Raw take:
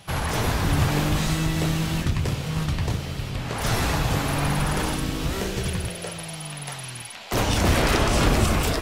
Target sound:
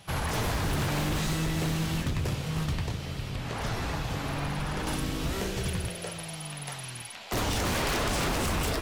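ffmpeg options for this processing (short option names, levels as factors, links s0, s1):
-filter_complex "[0:a]asettb=1/sr,asplit=3[s0][s1][s2];[s0]atrim=end=2.804[s3];[s1]atrim=start=2.8:end=4.87,asetpts=PTS-STARTPTS,afade=t=in:d=0.004:c=qsin,afade=t=out:st=2.066:d=0.004:c=qsin,acrossover=split=1800|6200[s4][s5][s6];[s4]acompressor=threshold=0.0562:ratio=4[s7];[s5]acompressor=threshold=0.0141:ratio=4[s8];[s6]acompressor=threshold=0.00316:ratio=4[s9];[s7][s8][s9]amix=inputs=3:normalize=0[s10];[s2]atrim=start=4.866[s11];[s3][s10]acrossfade=d=0.004:c1=hsin:c2=qsin[s12];[s12][s11]acrossfade=d=0.004:c1=qsin:c2=hsin,aeval=exprs='0.112*(abs(mod(val(0)/0.112+3,4)-2)-1)':c=same,volume=0.631"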